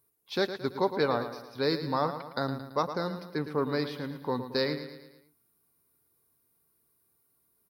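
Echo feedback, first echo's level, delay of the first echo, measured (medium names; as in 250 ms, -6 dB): 50%, -10.5 dB, 111 ms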